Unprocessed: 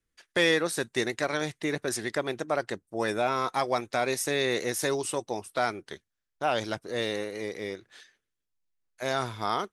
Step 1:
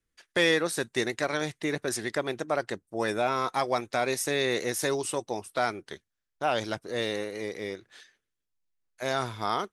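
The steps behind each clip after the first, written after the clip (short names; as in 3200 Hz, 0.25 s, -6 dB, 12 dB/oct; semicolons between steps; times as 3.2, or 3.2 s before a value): nothing audible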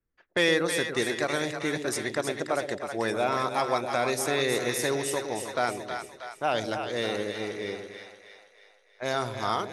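low-pass opened by the level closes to 1400 Hz, open at -27.5 dBFS; split-band echo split 610 Hz, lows 0.114 s, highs 0.318 s, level -6.5 dB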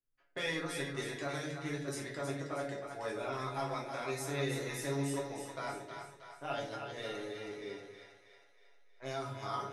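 resonator 140 Hz, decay 0.18 s, harmonics all, mix 90%; shoebox room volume 51 m³, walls mixed, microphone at 0.66 m; gain -6 dB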